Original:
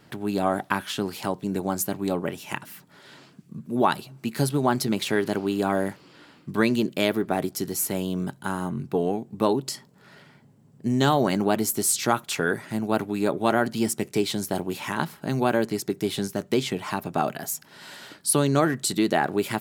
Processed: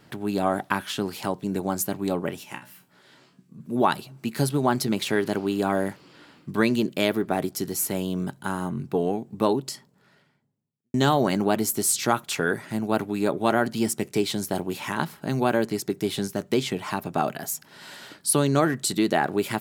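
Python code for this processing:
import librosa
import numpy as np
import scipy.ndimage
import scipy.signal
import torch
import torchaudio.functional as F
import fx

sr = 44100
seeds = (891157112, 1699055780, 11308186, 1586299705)

y = fx.comb_fb(x, sr, f0_hz=62.0, decay_s=0.24, harmonics='all', damping=0.0, mix_pct=90, at=(2.43, 3.59), fade=0.02)
y = fx.edit(y, sr, fx.fade_out_span(start_s=9.53, length_s=1.41, curve='qua'), tone=tone)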